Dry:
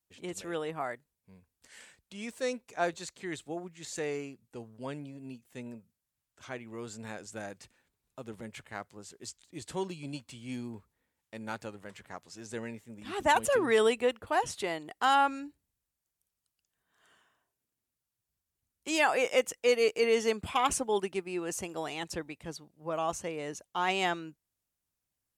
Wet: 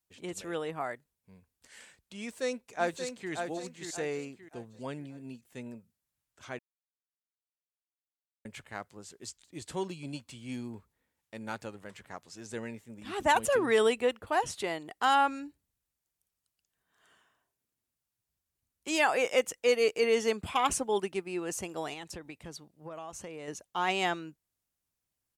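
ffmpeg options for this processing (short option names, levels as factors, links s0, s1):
-filter_complex "[0:a]asplit=2[s0][s1];[s1]afade=t=in:st=2.21:d=0.01,afade=t=out:st=3.32:d=0.01,aecho=0:1:580|1160|1740|2320:0.501187|0.175416|0.0613954|0.0214884[s2];[s0][s2]amix=inputs=2:normalize=0,asettb=1/sr,asplit=3[s3][s4][s5];[s3]atrim=end=21.934[s6];[s4]atrim=start=21.93:end=23.48,asetpts=PTS-STARTPTS,afade=t=in:d=0.004:c=qsin,afade=t=out:st=1.546:d=0.004:c=qsin,acompressor=threshold=0.0126:ratio=10:attack=3.2:release=140:knee=1:detection=peak[s7];[s5]atrim=start=23.476[s8];[s6][s7]acrossfade=d=0.004:c1=hsin:c2=qsin[s9];[s9][s8]acrossfade=d=0.004:c1=qsin:c2=hsin,asplit=3[s10][s11][s12];[s10]atrim=end=6.59,asetpts=PTS-STARTPTS,afade=t=out:st=6.586:d=0.004:c=hsin[s13];[s11]atrim=start=6.59:end=8.45,asetpts=PTS-STARTPTS,volume=0[s14];[s12]atrim=start=8.45,asetpts=PTS-STARTPTS,afade=t=in:d=0.004:c=hsin[s15];[s13][s14][s15]concat=n=3:v=0:a=1"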